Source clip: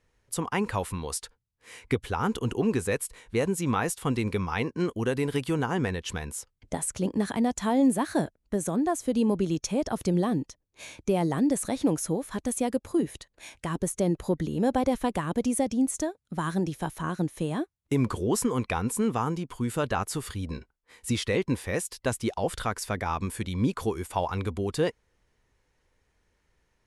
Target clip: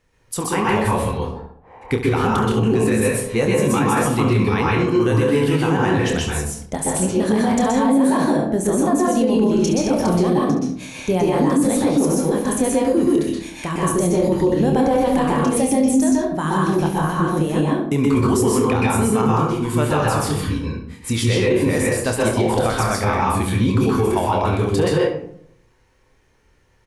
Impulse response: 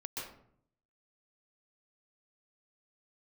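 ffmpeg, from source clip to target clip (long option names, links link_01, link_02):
-filter_complex "[0:a]asplit=3[link_01][link_02][link_03];[link_01]afade=type=out:start_time=1.1:duration=0.02[link_04];[link_02]lowpass=frequency=810:width_type=q:width=6.3,afade=type=in:start_time=1.1:duration=0.02,afade=type=out:start_time=1.81:duration=0.02[link_05];[link_03]afade=type=in:start_time=1.81:duration=0.02[link_06];[link_04][link_05][link_06]amix=inputs=3:normalize=0,asettb=1/sr,asplit=3[link_07][link_08][link_09];[link_07]atrim=end=3.034[link_10];[link_08]atrim=start=3.03:end=3.85,asetpts=PTS-STARTPTS,afade=type=in:duration=0.004:curve=qsin,afade=type=out:start_time=0.816:duration=0.004:curve=qsin,asplit=2[link_11][link_12];[link_12]adelay=14,volume=-3.5dB[link_13];[link_11][link_13]amix=inputs=2:normalize=0,atrim=end_sample=36162[link_14];[link_09]atrim=start=3.846[link_15];[link_10][link_14]acrossfade=duration=0.004:curve1=hsin:curve2=qsin[link_16];[link_16][link_15]acrossfade=duration=0.004:curve1=qsin:curve2=hsin,aecho=1:1:27|69:0.447|0.282[link_17];[1:a]atrim=start_sample=2205[link_18];[link_17][link_18]afir=irnorm=-1:irlink=0,alimiter=level_in=18dB:limit=-1dB:release=50:level=0:latency=1,volume=-7.5dB"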